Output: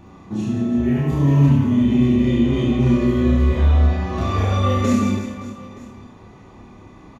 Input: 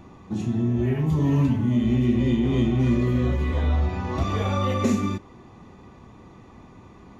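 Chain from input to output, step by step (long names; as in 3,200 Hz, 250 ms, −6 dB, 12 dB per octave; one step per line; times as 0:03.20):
double-tracking delay 29 ms −2.5 dB
on a send: reverse bouncing-ball delay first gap 70 ms, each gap 1.5×, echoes 5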